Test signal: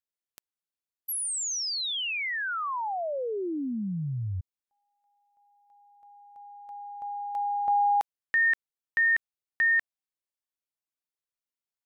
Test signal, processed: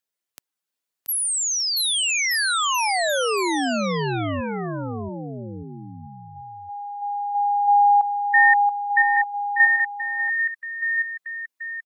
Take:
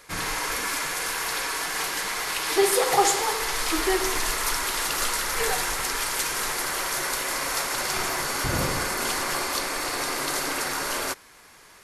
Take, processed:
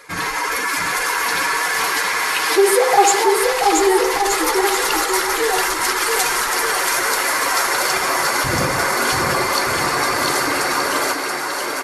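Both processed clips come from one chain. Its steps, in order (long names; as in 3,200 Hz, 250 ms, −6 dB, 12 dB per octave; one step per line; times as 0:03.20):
expanding power law on the bin magnitudes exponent 1.6
high-pass filter 190 Hz 6 dB per octave
bouncing-ball delay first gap 680 ms, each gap 0.8×, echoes 5
level +7.5 dB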